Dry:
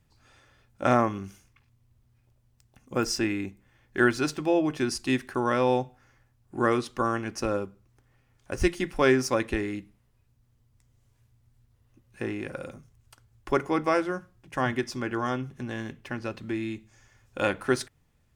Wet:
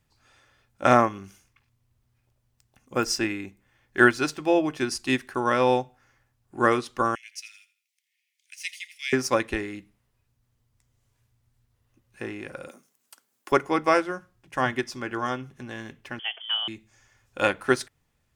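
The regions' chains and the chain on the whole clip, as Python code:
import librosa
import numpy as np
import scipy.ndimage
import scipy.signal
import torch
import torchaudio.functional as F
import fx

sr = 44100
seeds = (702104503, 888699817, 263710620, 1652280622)

y = fx.chain(x, sr, fx.cheby1_highpass(hz=2100.0, order=5),
    fx.echo_feedback(ms=83, feedback_pct=32, wet_db=-15.5), at=(7.15, 9.13))
y = fx.chain(y, sr, fx.steep_highpass(hz=200.0, slope=36),
    fx.high_shelf(hz=7400.0, db=12.0), at=(12.68, 13.52))
y = fx.chain(y, sr, fx.freq_invert(carrier_hz=3300),
    fx.highpass(hz=360.0, slope=24), at=(16.19, 16.68))
y = fx.low_shelf(y, sr, hz=440.0, db=-6.0)
y = fx.upward_expand(y, sr, threshold_db=-35.0, expansion=1.5)
y = F.gain(torch.from_numpy(y), 7.5).numpy()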